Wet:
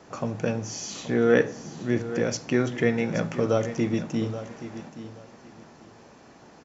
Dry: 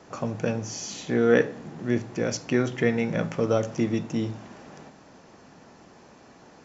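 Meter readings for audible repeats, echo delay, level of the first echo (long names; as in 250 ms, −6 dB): 2, 826 ms, −13.0 dB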